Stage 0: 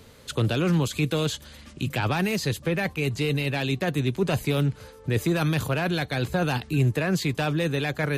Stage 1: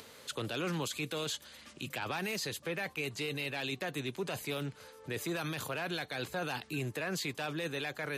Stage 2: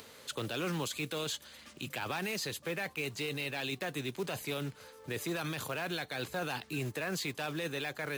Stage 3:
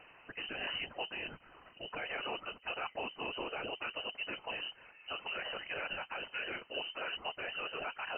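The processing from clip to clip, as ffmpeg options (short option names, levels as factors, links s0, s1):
-af "highpass=f=560:p=1,acompressor=mode=upward:threshold=0.00794:ratio=2.5,alimiter=limit=0.075:level=0:latency=1:release=21,volume=0.596"
-af "acrusher=bits=4:mode=log:mix=0:aa=0.000001"
-af "afftfilt=real='hypot(re,im)*cos(2*PI*random(0))':imag='hypot(re,im)*sin(2*PI*random(1))':win_size=512:overlap=0.75,lowpass=f=2600:t=q:w=0.5098,lowpass=f=2600:t=q:w=0.6013,lowpass=f=2600:t=q:w=0.9,lowpass=f=2600:t=q:w=2.563,afreqshift=-3100,tiltshelf=f=1200:g=6,volume=1.78"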